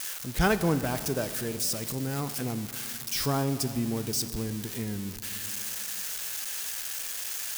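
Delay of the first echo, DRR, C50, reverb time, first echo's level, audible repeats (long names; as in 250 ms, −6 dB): no echo audible, 11.0 dB, 12.0 dB, 2.7 s, no echo audible, no echo audible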